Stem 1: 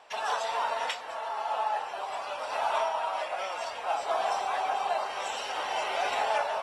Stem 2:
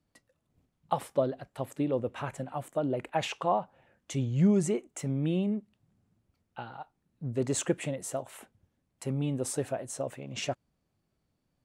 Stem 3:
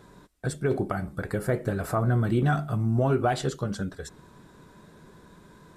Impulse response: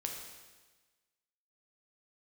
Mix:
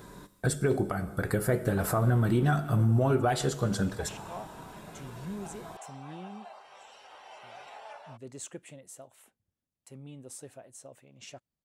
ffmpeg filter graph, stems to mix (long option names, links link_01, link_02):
-filter_complex "[0:a]adelay=1550,volume=-18.5dB[link_01];[1:a]highshelf=frequency=3600:gain=8,adelay=850,volume=-15.5dB[link_02];[2:a]highshelf=frequency=10000:gain=11.5,volume=1.5dB,asplit=2[link_03][link_04];[link_04]volume=-9.5dB[link_05];[3:a]atrim=start_sample=2205[link_06];[link_05][link_06]afir=irnorm=-1:irlink=0[link_07];[link_01][link_02][link_03][link_07]amix=inputs=4:normalize=0,alimiter=limit=-16.5dB:level=0:latency=1:release=493"